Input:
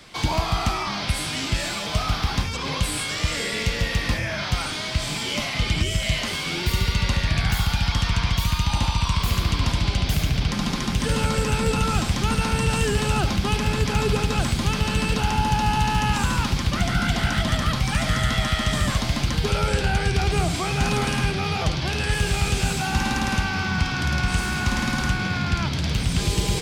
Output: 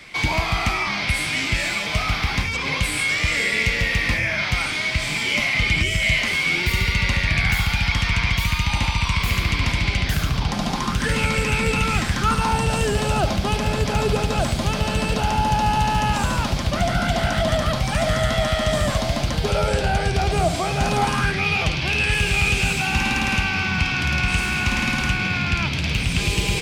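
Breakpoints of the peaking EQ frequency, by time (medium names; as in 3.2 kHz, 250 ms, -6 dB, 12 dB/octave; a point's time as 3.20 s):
peaking EQ +12 dB 0.5 oct
10.00 s 2.2 kHz
10.64 s 620 Hz
11.18 s 2.3 kHz
11.93 s 2.3 kHz
12.73 s 630 Hz
20.93 s 630 Hz
21.45 s 2.5 kHz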